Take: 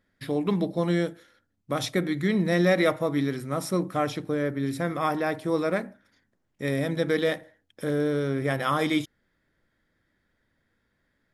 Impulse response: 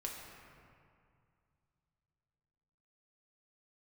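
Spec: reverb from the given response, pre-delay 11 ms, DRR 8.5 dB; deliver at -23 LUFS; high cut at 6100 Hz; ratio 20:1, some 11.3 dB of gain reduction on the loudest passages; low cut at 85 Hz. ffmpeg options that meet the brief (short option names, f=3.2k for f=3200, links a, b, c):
-filter_complex "[0:a]highpass=85,lowpass=6.1k,acompressor=threshold=-29dB:ratio=20,asplit=2[a][b];[1:a]atrim=start_sample=2205,adelay=11[c];[b][c]afir=irnorm=-1:irlink=0,volume=-8dB[d];[a][d]amix=inputs=2:normalize=0,volume=11.5dB"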